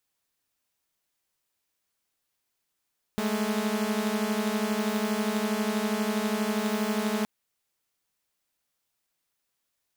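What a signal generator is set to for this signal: chord G#3/A3 saw, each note -26 dBFS 4.07 s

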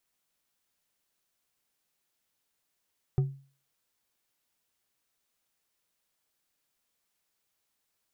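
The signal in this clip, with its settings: glass hit bar, lowest mode 137 Hz, decay 0.40 s, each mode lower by 11 dB, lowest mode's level -19 dB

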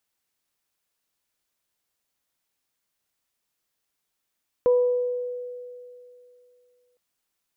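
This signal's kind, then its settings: additive tone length 2.31 s, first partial 493 Hz, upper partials -17.5 dB, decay 2.68 s, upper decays 0.87 s, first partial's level -14.5 dB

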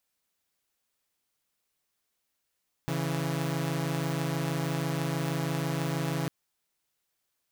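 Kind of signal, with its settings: chord C#3/E3 saw, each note -28.5 dBFS 3.40 s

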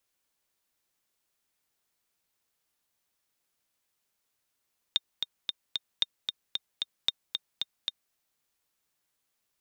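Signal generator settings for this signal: metronome 226 bpm, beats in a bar 4, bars 3, 3.66 kHz, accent 5.5 dB -11 dBFS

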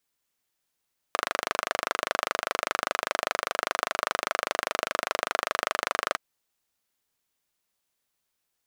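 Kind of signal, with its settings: single-cylinder engine model, steady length 5.02 s, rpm 3000, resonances 650/1200 Hz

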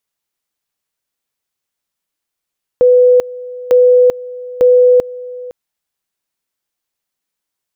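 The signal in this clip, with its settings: two-level tone 497 Hz -4.5 dBFS, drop 19.5 dB, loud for 0.39 s, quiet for 0.51 s, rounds 3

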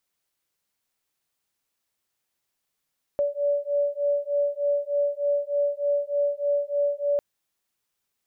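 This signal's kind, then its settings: beating tones 573 Hz, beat 3.3 Hz, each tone -25 dBFS 4.00 s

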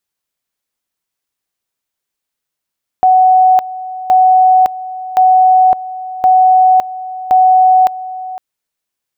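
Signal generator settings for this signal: two-level tone 745 Hz -4.5 dBFS, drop 16.5 dB, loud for 0.56 s, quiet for 0.51 s, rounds 5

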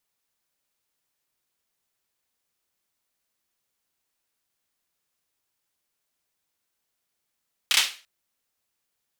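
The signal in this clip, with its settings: hand clap length 0.34 s, bursts 3, apart 30 ms, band 3 kHz, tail 0.35 s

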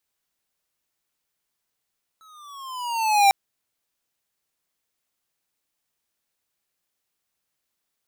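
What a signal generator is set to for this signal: gliding synth tone square, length 1.10 s, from 1.31 kHz, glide -9 st, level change +38 dB, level -13.5 dB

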